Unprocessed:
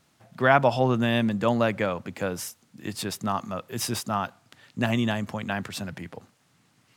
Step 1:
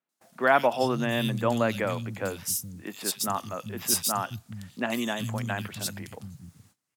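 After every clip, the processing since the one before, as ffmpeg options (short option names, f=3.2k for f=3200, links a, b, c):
-filter_complex "[0:a]crystalizer=i=2:c=0,acrossover=split=190|2900[a][b][c];[c]adelay=90[d];[a]adelay=420[e];[e][b][d]amix=inputs=3:normalize=0,agate=range=-21dB:threshold=-57dB:ratio=16:detection=peak,volume=-2dB"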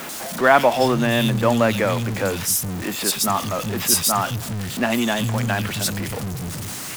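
-af "aeval=exprs='val(0)+0.5*0.0299*sgn(val(0))':c=same,volume=6dB"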